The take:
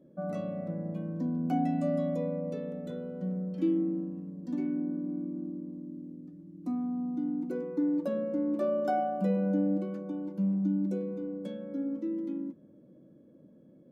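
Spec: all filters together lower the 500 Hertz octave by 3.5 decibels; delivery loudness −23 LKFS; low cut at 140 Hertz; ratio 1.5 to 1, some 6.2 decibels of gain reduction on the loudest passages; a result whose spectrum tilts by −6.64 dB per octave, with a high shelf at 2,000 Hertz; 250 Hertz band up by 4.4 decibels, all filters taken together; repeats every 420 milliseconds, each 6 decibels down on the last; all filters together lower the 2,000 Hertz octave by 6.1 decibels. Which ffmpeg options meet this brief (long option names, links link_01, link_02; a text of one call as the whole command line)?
ffmpeg -i in.wav -af "highpass=140,equalizer=frequency=250:width_type=o:gain=8,equalizer=frequency=500:width_type=o:gain=-6,highshelf=frequency=2000:gain=-6,equalizer=frequency=2000:width_type=o:gain=-5.5,acompressor=threshold=-38dB:ratio=1.5,aecho=1:1:420|840|1260|1680|2100|2520:0.501|0.251|0.125|0.0626|0.0313|0.0157,volume=10.5dB" out.wav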